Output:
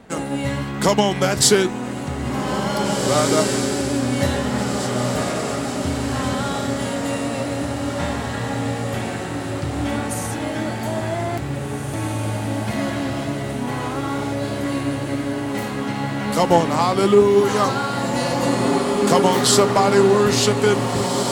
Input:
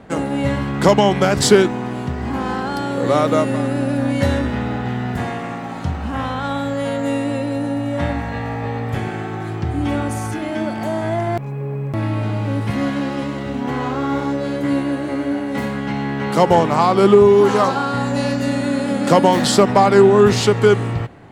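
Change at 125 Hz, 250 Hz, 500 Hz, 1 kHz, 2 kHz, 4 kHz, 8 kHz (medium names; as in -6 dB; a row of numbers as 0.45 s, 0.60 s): -2.5 dB, -2.5 dB, -3.0 dB, -2.5 dB, -1.0 dB, +2.5 dB, +6.0 dB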